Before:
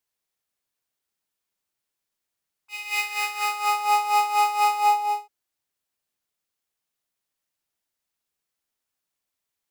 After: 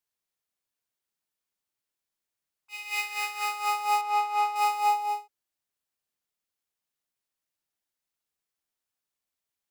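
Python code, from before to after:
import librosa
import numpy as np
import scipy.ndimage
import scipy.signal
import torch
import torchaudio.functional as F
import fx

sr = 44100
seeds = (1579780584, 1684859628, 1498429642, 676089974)

y = fx.high_shelf(x, sr, hz=4400.0, db=-10.5, at=(4.01, 4.56))
y = y * 10.0 ** (-4.5 / 20.0)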